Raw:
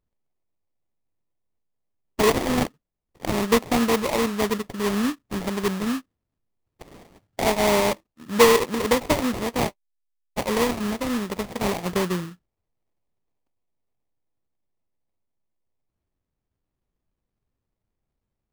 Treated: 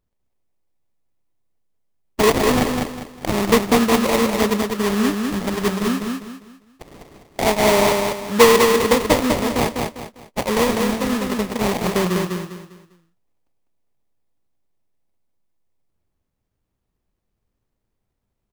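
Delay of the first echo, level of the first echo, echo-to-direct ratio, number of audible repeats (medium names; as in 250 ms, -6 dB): 200 ms, -4.0 dB, -3.5 dB, 4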